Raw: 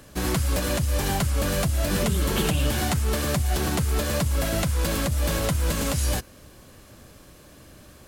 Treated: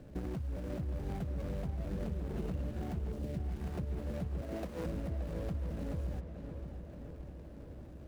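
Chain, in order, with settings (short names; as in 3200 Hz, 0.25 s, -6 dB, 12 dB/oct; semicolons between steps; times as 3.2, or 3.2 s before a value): median filter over 41 samples; 3.11–3.76 bell 2100 Hz -> 280 Hz -14 dB 0.98 oct; 4.41–4.86 steep high-pass 230 Hz; compressor 5:1, threshold -36 dBFS, peak gain reduction 15 dB; darkening echo 0.575 s, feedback 66%, low-pass 3600 Hz, level -8.5 dB; gain -1 dB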